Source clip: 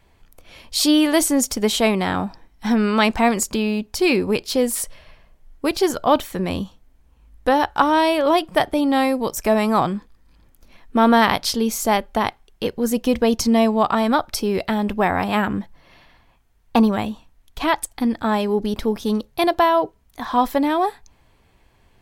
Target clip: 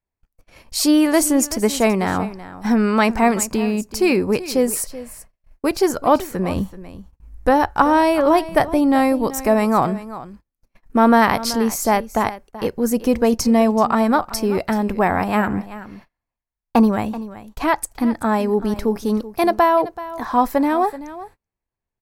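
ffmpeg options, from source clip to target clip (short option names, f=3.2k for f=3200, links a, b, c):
-filter_complex "[0:a]asettb=1/sr,asplit=3[a][b][c];[a]atrim=end=6.564[d];[b]atrim=start=6.56:end=9.27,asetpts=PTS-STARTPTS,afade=t=in:d=0.004:c=qsin,afade=t=out:st=2.706:d=0.004:c=qsin,lowshelf=f=130:g=8.5[e];[c]atrim=start=9.266[f];[d][e]acrossfade=d=0.004:c1=hsin:c2=qsin[g];[g][f]acrossfade=d=0.004:c1=qsin:c2=hsin,aecho=1:1:381:0.168,agate=range=-31dB:threshold=-43dB:ratio=16:detection=peak,equalizer=f=3.4k:t=o:w=0.57:g=-11,volume=1.5dB"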